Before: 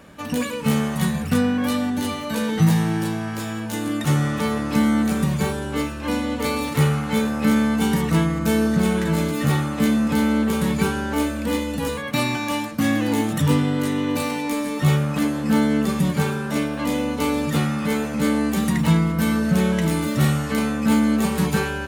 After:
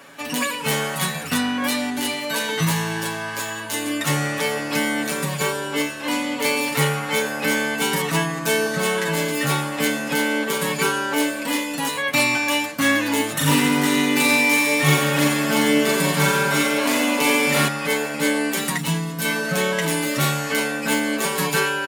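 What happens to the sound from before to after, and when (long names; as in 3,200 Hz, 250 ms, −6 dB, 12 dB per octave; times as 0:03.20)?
0:13.37–0:17.68: reverse bouncing-ball delay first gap 40 ms, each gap 1.15×, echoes 8, each echo −2 dB
0:18.77–0:19.25: parametric band 1,100 Hz −8 dB 2.6 octaves
whole clip: high-pass filter 860 Hz 6 dB per octave; comb filter 7.2 ms, depth 82%; level +5 dB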